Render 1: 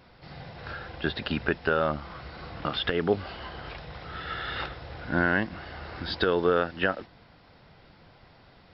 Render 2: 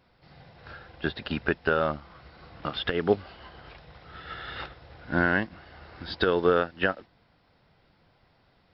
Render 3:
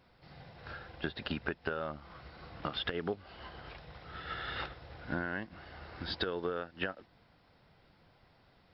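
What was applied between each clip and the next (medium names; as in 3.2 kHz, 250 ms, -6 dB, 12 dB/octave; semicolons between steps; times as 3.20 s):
upward expansion 1.5:1, over -42 dBFS; trim +2.5 dB
compression 8:1, threshold -31 dBFS, peak gain reduction 15 dB; trim -1 dB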